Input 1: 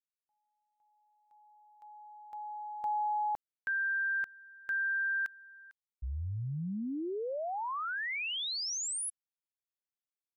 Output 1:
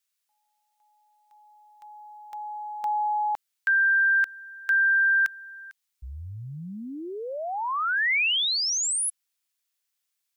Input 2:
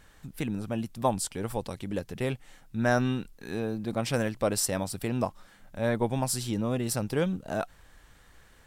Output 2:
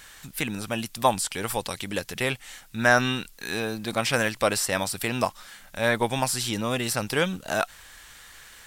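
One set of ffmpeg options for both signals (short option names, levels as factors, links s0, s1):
-filter_complex "[0:a]acrossover=split=2500[s0][s1];[s1]acompressor=threshold=0.00794:ratio=4:attack=1:release=60[s2];[s0][s2]amix=inputs=2:normalize=0,tiltshelf=f=970:g=-9,volume=2.37"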